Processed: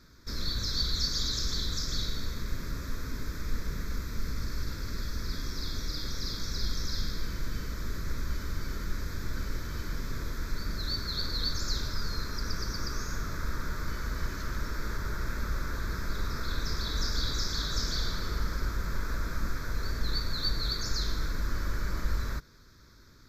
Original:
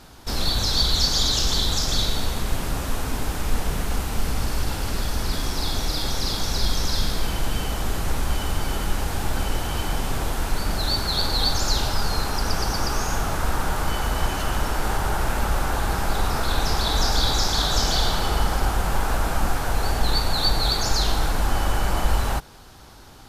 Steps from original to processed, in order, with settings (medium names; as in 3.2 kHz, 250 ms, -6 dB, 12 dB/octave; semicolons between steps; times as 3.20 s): static phaser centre 2.9 kHz, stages 6; trim -8.5 dB